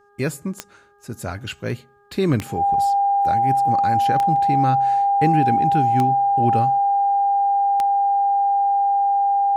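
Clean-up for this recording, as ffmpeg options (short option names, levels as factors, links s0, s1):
-af "adeclick=t=4,bandreject=f=407.2:t=h:w=4,bandreject=f=814.4:t=h:w=4,bandreject=f=1221.6:t=h:w=4,bandreject=f=1628.8:t=h:w=4,bandreject=f=800:w=30"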